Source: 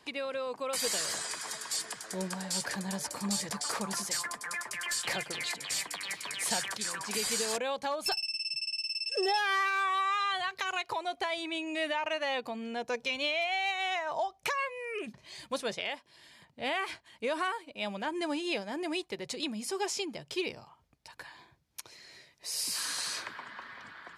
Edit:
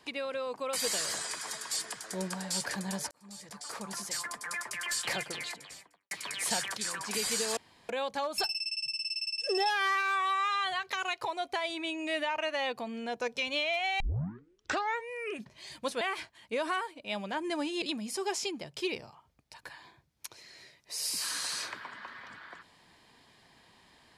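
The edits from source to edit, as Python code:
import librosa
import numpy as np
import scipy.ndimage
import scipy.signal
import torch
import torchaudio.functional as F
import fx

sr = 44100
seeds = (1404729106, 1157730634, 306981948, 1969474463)

y = fx.studio_fade_out(x, sr, start_s=5.22, length_s=0.89)
y = fx.edit(y, sr, fx.fade_in_span(start_s=3.11, length_s=1.4),
    fx.insert_room_tone(at_s=7.57, length_s=0.32),
    fx.tape_start(start_s=13.68, length_s=1.12),
    fx.cut(start_s=15.69, length_s=1.03),
    fx.cut(start_s=18.53, length_s=0.83), tone=tone)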